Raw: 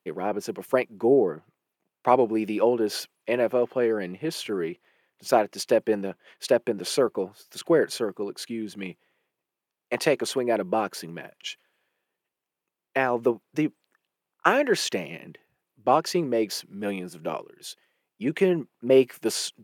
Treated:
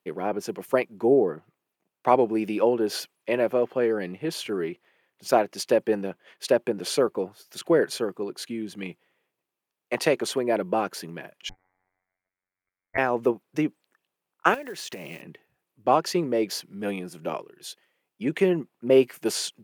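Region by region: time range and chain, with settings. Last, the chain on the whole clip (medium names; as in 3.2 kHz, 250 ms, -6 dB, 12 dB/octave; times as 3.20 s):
11.49–12.98 s: robot voice 92 Hz + frequency inversion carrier 2.5 kHz
14.54–15.22 s: block-companded coder 5-bit + treble shelf 10 kHz +5.5 dB + compression 16:1, threshold -32 dBFS
whole clip: none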